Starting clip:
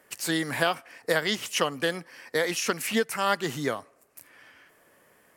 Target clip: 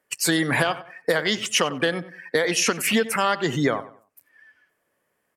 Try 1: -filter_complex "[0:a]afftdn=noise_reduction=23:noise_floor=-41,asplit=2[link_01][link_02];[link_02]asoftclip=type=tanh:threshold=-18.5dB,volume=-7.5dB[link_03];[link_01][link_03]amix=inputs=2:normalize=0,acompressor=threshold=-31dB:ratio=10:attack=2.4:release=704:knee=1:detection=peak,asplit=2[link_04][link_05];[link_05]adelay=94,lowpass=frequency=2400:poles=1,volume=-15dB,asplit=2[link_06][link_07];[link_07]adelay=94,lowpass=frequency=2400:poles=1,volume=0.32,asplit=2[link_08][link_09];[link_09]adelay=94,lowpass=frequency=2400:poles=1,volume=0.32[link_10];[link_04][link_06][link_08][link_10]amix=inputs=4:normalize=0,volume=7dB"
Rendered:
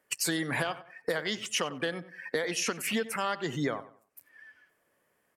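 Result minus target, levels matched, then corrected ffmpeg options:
downward compressor: peak gain reduction +9.5 dB
-filter_complex "[0:a]afftdn=noise_reduction=23:noise_floor=-41,asplit=2[link_01][link_02];[link_02]asoftclip=type=tanh:threshold=-18.5dB,volume=-7.5dB[link_03];[link_01][link_03]amix=inputs=2:normalize=0,acompressor=threshold=-20.5dB:ratio=10:attack=2.4:release=704:knee=1:detection=peak,asplit=2[link_04][link_05];[link_05]adelay=94,lowpass=frequency=2400:poles=1,volume=-15dB,asplit=2[link_06][link_07];[link_07]adelay=94,lowpass=frequency=2400:poles=1,volume=0.32,asplit=2[link_08][link_09];[link_09]adelay=94,lowpass=frequency=2400:poles=1,volume=0.32[link_10];[link_04][link_06][link_08][link_10]amix=inputs=4:normalize=0,volume=7dB"

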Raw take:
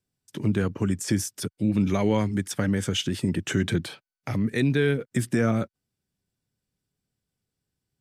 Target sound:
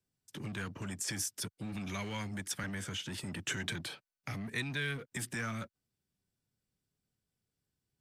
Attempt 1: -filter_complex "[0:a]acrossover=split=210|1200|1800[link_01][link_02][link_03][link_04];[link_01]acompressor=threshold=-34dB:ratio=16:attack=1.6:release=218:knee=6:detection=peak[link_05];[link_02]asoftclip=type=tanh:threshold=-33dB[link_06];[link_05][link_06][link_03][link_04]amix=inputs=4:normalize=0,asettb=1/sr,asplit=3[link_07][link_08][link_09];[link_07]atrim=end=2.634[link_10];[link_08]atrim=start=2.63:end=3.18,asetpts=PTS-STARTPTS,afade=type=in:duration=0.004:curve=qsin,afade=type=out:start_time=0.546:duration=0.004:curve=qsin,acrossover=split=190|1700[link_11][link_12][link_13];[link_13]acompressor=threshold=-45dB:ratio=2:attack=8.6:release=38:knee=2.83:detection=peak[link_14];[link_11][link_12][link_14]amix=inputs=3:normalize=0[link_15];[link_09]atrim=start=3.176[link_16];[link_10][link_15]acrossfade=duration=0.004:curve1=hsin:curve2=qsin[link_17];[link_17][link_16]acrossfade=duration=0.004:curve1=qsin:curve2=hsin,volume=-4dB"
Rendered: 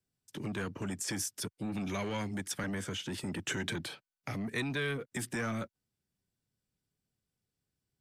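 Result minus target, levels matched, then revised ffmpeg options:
soft clipping: distortion −4 dB
-filter_complex "[0:a]acrossover=split=210|1200|1800[link_01][link_02][link_03][link_04];[link_01]acompressor=threshold=-34dB:ratio=16:attack=1.6:release=218:knee=6:detection=peak[link_05];[link_02]asoftclip=type=tanh:threshold=-43dB[link_06];[link_05][link_06][link_03][link_04]amix=inputs=4:normalize=0,asettb=1/sr,asplit=3[link_07][link_08][link_09];[link_07]atrim=end=2.634[link_10];[link_08]atrim=start=2.63:end=3.18,asetpts=PTS-STARTPTS,afade=type=in:duration=0.004:curve=qsin,afade=type=out:start_time=0.546:duration=0.004:curve=qsin,acrossover=split=190|1700[link_11][link_12][link_13];[link_13]acompressor=threshold=-45dB:ratio=2:attack=8.6:release=38:knee=2.83:detection=peak[link_14];[link_11][link_12][link_14]amix=inputs=3:normalize=0[link_15];[link_09]atrim=start=3.176[link_16];[link_10][link_15]acrossfade=duration=0.004:curve1=hsin:curve2=qsin[link_17];[link_17][link_16]acrossfade=duration=0.004:curve1=qsin:curve2=hsin,volume=-4dB"

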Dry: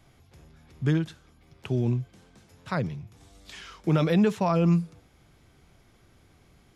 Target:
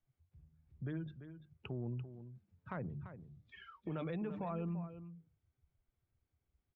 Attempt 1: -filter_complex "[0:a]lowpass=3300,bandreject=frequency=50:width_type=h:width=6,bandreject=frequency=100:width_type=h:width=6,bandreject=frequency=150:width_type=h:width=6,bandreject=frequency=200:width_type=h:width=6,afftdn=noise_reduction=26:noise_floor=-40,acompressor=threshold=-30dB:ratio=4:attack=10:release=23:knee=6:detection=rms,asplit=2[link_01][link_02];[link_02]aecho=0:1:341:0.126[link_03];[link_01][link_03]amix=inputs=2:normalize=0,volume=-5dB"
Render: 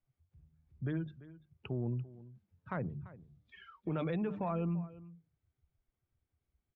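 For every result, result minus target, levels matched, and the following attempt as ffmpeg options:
downward compressor: peak gain reduction −5.5 dB; echo-to-direct −6.5 dB
-filter_complex "[0:a]lowpass=3300,bandreject=frequency=50:width_type=h:width=6,bandreject=frequency=100:width_type=h:width=6,bandreject=frequency=150:width_type=h:width=6,bandreject=frequency=200:width_type=h:width=6,afftdn=noise_reduction=26:noise_floor=-40,acompressor=threshold=-37dB:ratio=4:attack=10:release=23:knee=6:detection=rms,asplit=2[link_01][link_02];[link_02]aecho=0:1:341:0.126[link_03];[link_01][link_03]amix=inputs=2:normalize=0,volume=-5dB"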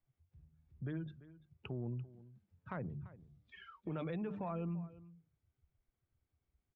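echo-to-direct −6.5 dB
-filter_complex "[0:a]lowpass=3300,bandreject=frequency=50:width_type=h:width=6,bandreject=frequency=100:width_type=h:width=6,bandreject=frequency=150:width_type=h:width=6,bandreject=frequency=200:width_type=h:width=6,afftdn=noise_reduction=26:noise_floor=-40,acompressor=threshold=-37dB:ratio=4:attack=10:release=23:knee=6:detection=rms,asplit=2[link_01][link_02];[link_02]aecho=0:1:341:0.266[link_03];[link_01][link_03]amix=inputs=2:normalize=0,volume=-5dB"

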